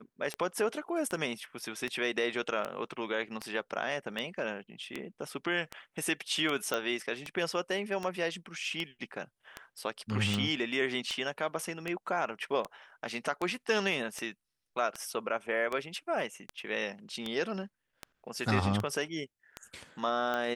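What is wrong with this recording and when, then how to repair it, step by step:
scratch tick 78 rpm −20 dBFS
0:06.74: click −17 dBFS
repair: click removal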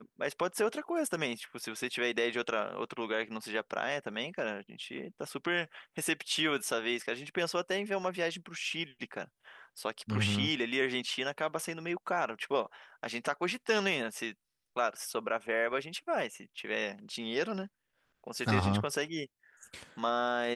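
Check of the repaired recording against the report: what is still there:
none of them is left

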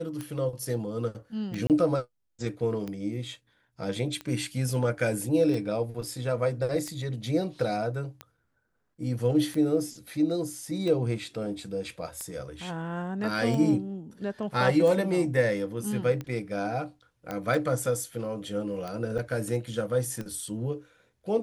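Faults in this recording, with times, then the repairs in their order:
scratch tick 45 rpm −22 dBFS
0:01.67–0:01.70: drop-out 28 ms
0:17.31: click −19 dBFS
0:19.18–0:19.19: drop-out 6.9 ms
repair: click removal
repair the gap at 0:01.67, 28 ms
repair the gap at 0:19.18, 6.9 ms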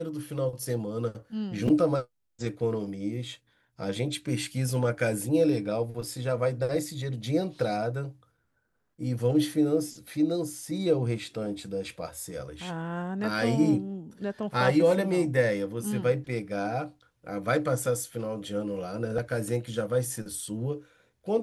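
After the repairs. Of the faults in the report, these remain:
none of them is left

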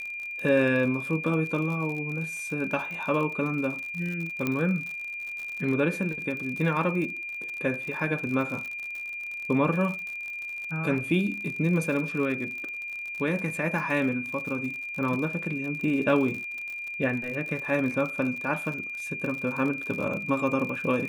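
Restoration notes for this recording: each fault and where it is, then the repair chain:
surface crackle 55 per second −33 dBFS
whistle 2,400 Hz −33 dBFS
0:04.47: click −14 dBFS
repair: click removal
notch filter 2,400 Hz, Q 30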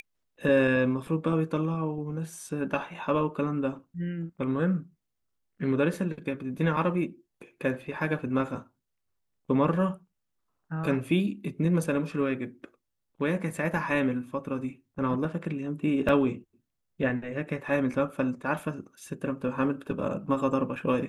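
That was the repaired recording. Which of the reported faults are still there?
none of them is left

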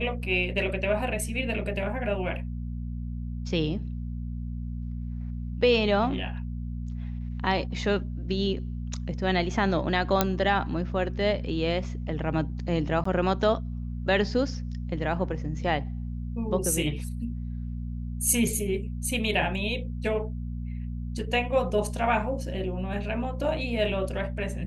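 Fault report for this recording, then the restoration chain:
mains hum 60 Hz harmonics 4 −33 dBFS
0:10.21: click −5 dBFS
0:13.04–0:13.05: drop-out 14 ms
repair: click removal
hum removal 60 Hz, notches 4
repair the gap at 0:13.04, 14 ms

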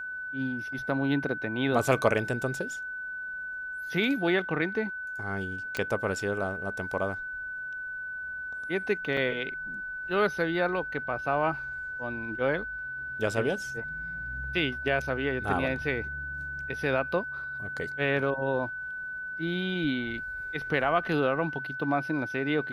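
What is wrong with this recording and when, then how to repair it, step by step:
whistle 1,500 Hz −34 dBFS
0:05.77: click −16 dBFS
0:09.17: drop-out 2.8 ms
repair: click removal
notch filter 1,500 Hz, Q 30
repair the gap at 0:09.17, 2.8 ms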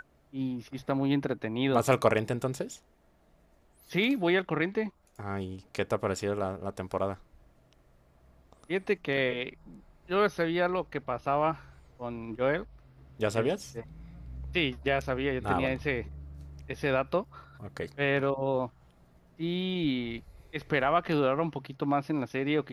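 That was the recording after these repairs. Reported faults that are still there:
0:05.77: click

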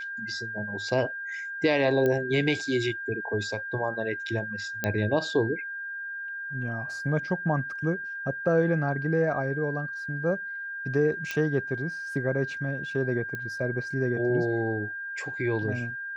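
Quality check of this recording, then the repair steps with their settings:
whistle 1,600 Hz −33 dBFS
0:02.06: click −15 dBFS
0:04.84: click −12 dBFS
0:11.31: click −16 dBFS
0:13.35: click −22 dBFS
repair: click removal
notch filter 1,600 Hz, Q 30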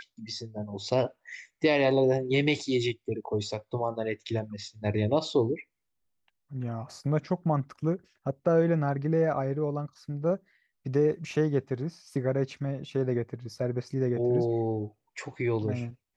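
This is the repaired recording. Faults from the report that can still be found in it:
none of them is left

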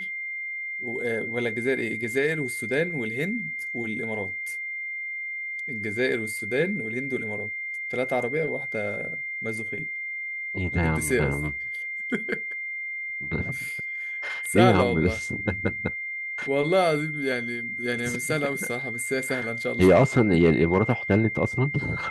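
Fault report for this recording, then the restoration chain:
whistle 2,100 Hz −30 dBFS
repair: notch filter 2,100 Hz, Q 30

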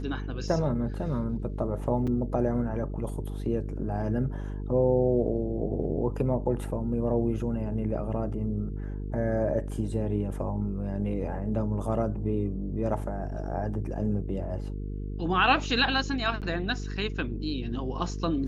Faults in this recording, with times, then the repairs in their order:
mains buzz 50 Hz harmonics 9 −34 dBFS
0:02.07–0:02.08: drop-out 5.4 ms
0:16.41–0:16.42: drop-out 8 ms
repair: hum removal 50 Hz, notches 9
repair the gap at 0:02.07, 5.4 ms
repair the gap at 0:16.41, 8 ms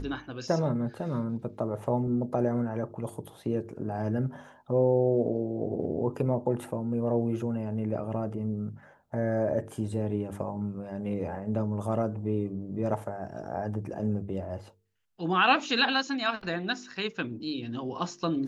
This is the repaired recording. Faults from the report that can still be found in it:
none of them is left

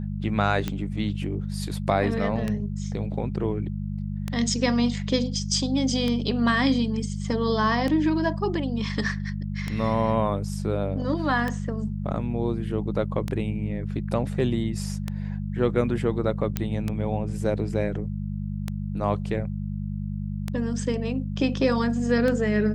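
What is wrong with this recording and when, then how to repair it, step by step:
mains hum 50 Hz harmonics 4 −30 dBFS
scratch tick 33 1/3 rpm −14 dBFS
0:16.57: click −11 dBFS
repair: click removal
hum removal 50 Hz, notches 4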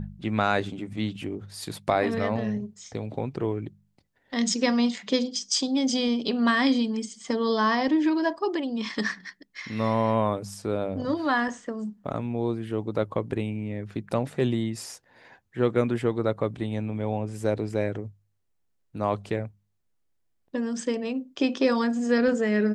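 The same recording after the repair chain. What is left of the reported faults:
none of them is left

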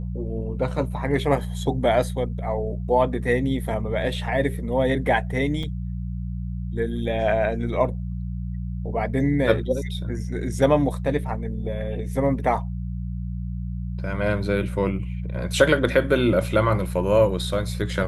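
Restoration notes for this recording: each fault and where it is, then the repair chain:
mains hum 60 Hz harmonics 3 −29 dBFS
0:05.63: drop-out 4.5 ms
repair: hum removal 60 Hz, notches 3
repair the gap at 0:05.63, 4.5 ms

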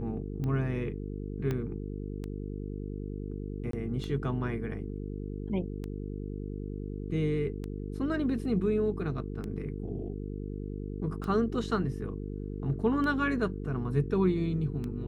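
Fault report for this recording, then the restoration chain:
mains buzz 50 Hz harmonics 9 −37 dBFS
scratch tick 33 1/3 rpm −25 dBFS
0:01.51: click −20 dBFS
0:03.71–0:03.73: drop-out 23 ms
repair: click removal
hum removal 50 Hz, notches 9
repair the gap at 0:03.71, 23 ms

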